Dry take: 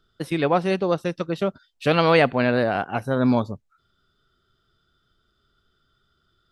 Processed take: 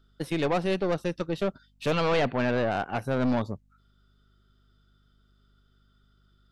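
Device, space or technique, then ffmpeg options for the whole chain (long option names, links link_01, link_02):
valve amplifier with mains hum: -filter_complex "[0:a]aeval=exprs='(tanh(10*val(0)+0.45)-tanh(0.45))/10':channel_layout=same,aeval=exprs='val(0)+0.000794*(sin(2*PI*50*n/s)+sin(2*PI*2*50*n/s)/2+sin(2*PI*3*50*n/s)/3+sin(2*PI*4*50*n/s)/4+sin(2*PI*5*50*n/s)/5)':channel_layout=same,asplit=3[link_01][link_02][link_03];[link_01]afade=type=out:start_time=1.9:duration=0.02[link_04];[link_02]lowpass=4600,afade=type=in:start_time=1.9:duration=0.02,afade=type=out:start_time=2.7:duration=0.02[link_05];[link_03]afade=type=in:start_time=2.7:duration=0.02[link_06];[link_04][link_05][link_06]amix=inputs=3:normalize=0,volume=-1dB"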